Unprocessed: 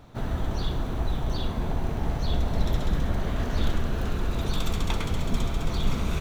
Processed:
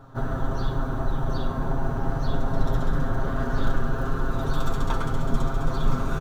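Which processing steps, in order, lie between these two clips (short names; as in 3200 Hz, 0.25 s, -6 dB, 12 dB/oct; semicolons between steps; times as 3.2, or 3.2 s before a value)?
resonant high shelf 1800 Hz -6.5 dB, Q 3; comb 7.5 ms, depth 81%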